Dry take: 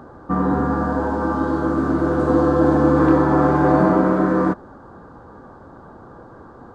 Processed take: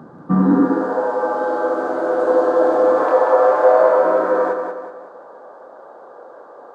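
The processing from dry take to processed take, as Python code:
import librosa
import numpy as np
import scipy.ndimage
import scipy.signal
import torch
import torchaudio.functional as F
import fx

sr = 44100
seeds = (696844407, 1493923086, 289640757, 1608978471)

y = fx.low_shelf_res(x, sr, hz=400.0, db=-6.5, q=1.5, at=(3.03, 4.05))
y = fx.echo_feedback(y, sr, ms=186, feedback_pct=42, wet_db=-6)
y = fx.filter_sweep_highpass(y, sr, from_hz=170.0, to_hz=560.0, start_s=0.34, end_s=1.02, q=3.4)
y = y * 10.0 ** (-2.0 / 20.0)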